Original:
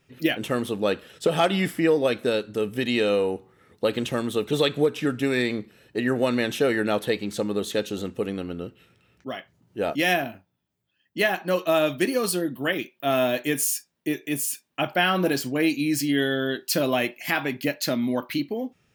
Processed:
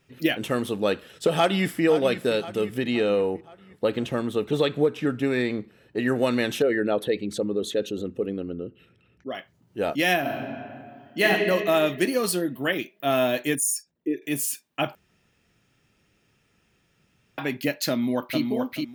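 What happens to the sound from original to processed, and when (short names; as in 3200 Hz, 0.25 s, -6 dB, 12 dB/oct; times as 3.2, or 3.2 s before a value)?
1.35–1.84 echo throw 0.52 s, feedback 55%, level -12 dB
2.78–6 high shelf 3000 Hz -9 dB
6.62–9.35 formant sharpening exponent 1.5
10.2–11.24 reverb throw, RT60 2.2 s, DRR -4.5 dB
13.55–14.22 formant sharpening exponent 2
14.95–17.38 room tone
17.9–18.41 echo throw 0.43 s, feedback 20%, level -3.5 dB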